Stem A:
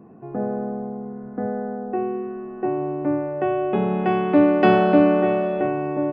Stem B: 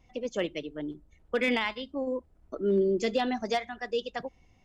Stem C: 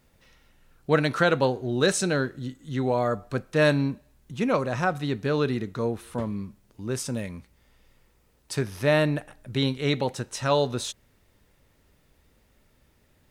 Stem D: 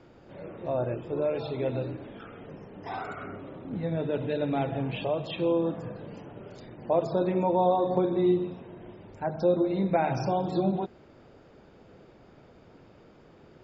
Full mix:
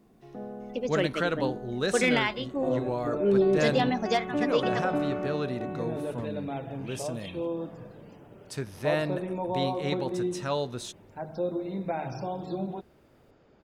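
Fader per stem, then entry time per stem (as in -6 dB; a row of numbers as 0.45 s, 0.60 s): -14.0 dB, +2.5 dB, -7.0 dB, -6.5 dB; 0.00 s, 0.60 s, 0.00 s, 1.95 s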